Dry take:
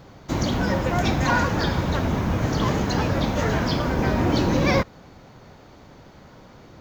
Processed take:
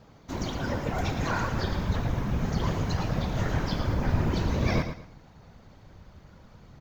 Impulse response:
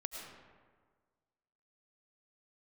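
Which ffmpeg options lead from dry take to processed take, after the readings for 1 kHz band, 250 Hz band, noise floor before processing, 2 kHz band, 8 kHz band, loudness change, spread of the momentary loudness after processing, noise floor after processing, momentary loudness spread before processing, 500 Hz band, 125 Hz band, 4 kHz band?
-8.0 dB, -8.0 dB, -48 dBFS, -8.5 dB, -8.0 dB, -6.5 dB, 5 LU, -54 dBFS, 3 LU, -8.5 dB, -4.0 dB, -8.0 dB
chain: -af "asubboost=boost=4.5:cutoff=110,afftfilt=real='hypot(re,im)*cos(2*PI*random(0))':imag='hypot(re,im)*sin(2*PI*random(1))':win_size=512:overlap=0.75,aecho=1:1:112|224|336:0.355|0.0958|0.0259,volume=0.75"

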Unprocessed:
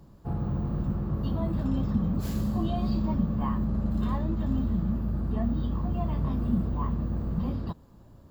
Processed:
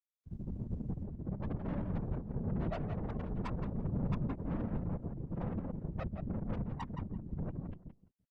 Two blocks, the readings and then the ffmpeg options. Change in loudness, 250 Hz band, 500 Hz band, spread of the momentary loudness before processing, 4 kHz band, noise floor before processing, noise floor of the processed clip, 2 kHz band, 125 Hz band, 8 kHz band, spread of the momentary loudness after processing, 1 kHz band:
-10.0 dB, -11.0 dB, -5.5 dB, 3 LU, under -10 dB, -53 dBFS, -79 dBFS, -4.0 dB, -9.0 dB, no reading, 6 LU, -9.5 dB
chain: -filter_complex "[0:a]afftfilt=real='re*gte(hypot(re,im),0.2)':imag='im*gte(hypot(re,im),0.2)':win_size=1024:overlap=0.75,areverse,acompressor=mode=upward:threshold=0.0141:ratio=2.5,areverse,highpass=f=220:t=q:w=0.5412,highpass=f=220:t=q:w=1.307,lowpass=f=3500:t=q:w=0.5176,lowpass=f=3500:t=q:w=0.7071,lowpass=f=3500:t=q:w=1.932,afreqshift=-63,acontrast=83,aeval=exprs='(tanh(63.1*val(0)+0.75)-tanh(0.75))/63.1':c=same,asplit=2[s0][s1];[s1]adelay=170,lowpass=f=2500:p=1,volume=0.473,asplit=2[s2][s3];[s3]adelay=170,lowpass=f=2500:p=1,volume=0.18,asplit=2[s4][s5];[s5]adelay=170,lowpass=f=2500:p=1,volume=0.18[s6];[s0][s2][s4][s6]amix=inputs=4:normalize=0,afftfilt=real='hypot(re,im)*cos(2*PI*random(0))':imag='hypot(re,im)*sin(2*PI*random(1))':win_size=512:overlap=0.75,volume=2" -ar 48000 -c:a libopus -b:a 20k

